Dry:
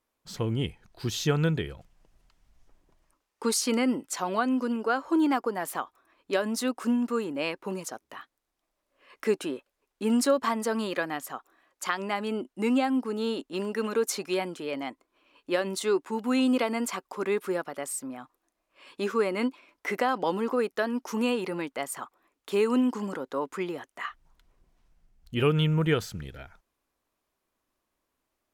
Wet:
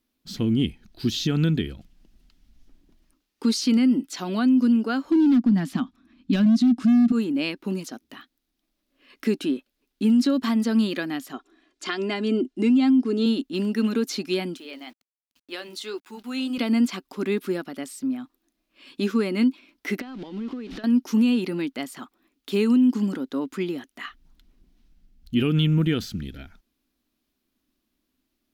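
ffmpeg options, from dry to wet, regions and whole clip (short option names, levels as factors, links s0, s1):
-filter_complex "[0:a]asettb=1/sr,asplit=3[s0][s1][s2];[s0]atrim=end=5.104[s3];[s1]atrim=start=5.1:end=7.12,asetpts=PTS-STARTPTS,afade=t=in:d=0.004:c=qsin,afade=t=out:st=2.016:d=0.004:c=qsin,lowpass=6800,lowshelf=f=310:t=q:w=3:g=10,asoftclip=type=hard:threshold=0.106[s4];[s2]atrim=start=7.116[s5];[s3][s4]acrossfade=d=0.004:c1=hsin:c2=qsin[s6];[s6][s5]acrossfade=d=0.004:c1=qsin:c2=hsin,asettb=1/sr,asplit=3[s7][s8][s9];[s7]atrim=end=11.334[s10];[s8]atrim=start=11.33:end=13.26,asetpts=PTS-STARTPTS,afade=t=in:d=0.004:c=qsin,afade=t=out:st=1.926:d=0.004:c=qsin,lowpass=f=8600:w=0.5412,lowpass=f=8600:w=1.3066,equalizer=f=420:w=2.4:g=5.5,aecho=1:1:2.9:0.52,atrim=end_sample=85113[s11];[s9]atrim=start=13.256[s12];[s10][s11]acrossfade=d=0.004:c1=hsin:c2=qsin[s13];[s13][s12]acrossfade=d=0.004:c1=qsin:c2=hsin,asettb=1/sr,asplit=3[s14][s15][s16];[s14]atrim=end=14.574[s17];[s15]atrim=start=14.57:end=16.58,asetpts=PTS-STARTPTS,afade=t=in:d=0.004:c=qsin,afade=t=out:st=2.006:d=0.004:c=qsin,highpass=520,flanger=delay=0.8:depth=4.9:regen=-67:speed=2:shape=sinusoidal,aeval=exprs='val(0)*gte(abs(val(0)),0.00126)':c=same[s18];[s16]atrim=start=16.576[s19];[s17][s18]acrossfade=d=0.004:c1=hsin:c2=qsin[s20];[s20][s19]acrossfade=d=0.004:c1=qsin:c2=hsin,asettb=1/sr,asplit=3[s21][s22][s23];[s21]atrim=end=20.004[s24];[s22]atrim=start=20:end=20.84,asetpts=PTS-STARTPTS,afade=t=in:d=0.004:c=qsin,afade=t=out:st=0.836:d=0.004:c=qsin,aeval=exprs='val(0)+0.5*0.02*sgn(val(0))':c=same,lowpass=4100,acompressor=threshold=0.0178:ratio=20:attack=3.2:release=140:knee=1:detection=peak[s25];[s23]atrim=start=20.836[s26];[s24][s25]acrossfade=d=0.004:c1=hsin:c2=qsin[s27];[s27][s26]acrossfade=d=0.004:c1=qsin:c2=hsin,acrossover=split=6300[s28][s29];[s29]acompressor=threshold=0.00562:ratio=4:attack=1:release=60[s30];[s28][s30]amix=inputs=2:normalize=0,equalizer=f=125:t=o:w=1:g=-6,equalizer=f=250:t=o:w=1:g=10,equalizer=f=500:t=o:w=1:g=-10,equalizer=f=1000:t=o:w=1:g=-11,equalizer=f=2000:t=o:w=1:g=-4,equalizer=f=4000:t=o:w=1:g=3,equalizer=f=8000:t=o:w=1:g=-7,alimiter=limit=0.106:level=0:latency=1:release=69,volume=2.11"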